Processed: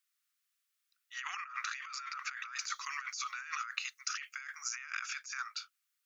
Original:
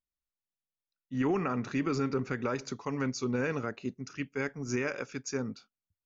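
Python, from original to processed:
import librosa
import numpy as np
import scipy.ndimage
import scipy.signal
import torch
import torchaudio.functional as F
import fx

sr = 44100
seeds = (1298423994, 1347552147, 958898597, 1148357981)

y = scipy.signal.sosfilt(scipy.signal.cheby1(5, 1.0, 1200.0, 'highpass', fs=sr, output='sos'), x)
y = fx.over_compress(y, sr, threshold_db=-49.0, ratio=-1.0)
y = fx.high_shelf(y, sr, hz=5400.0, db=6.0, at=(2.56, 4.74))
y = F.gain(torch.from_numpy(y), 7.0).numpy()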